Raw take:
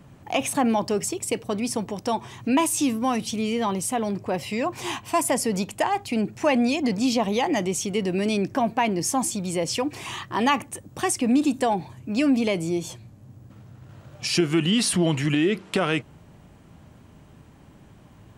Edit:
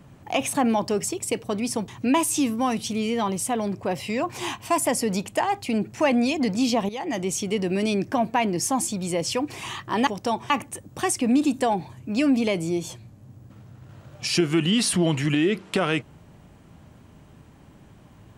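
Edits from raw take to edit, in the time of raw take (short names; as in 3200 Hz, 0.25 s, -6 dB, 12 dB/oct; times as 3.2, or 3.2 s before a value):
1.88–2.31 move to 10.5
7.32–7.76 fade in, from -14 dB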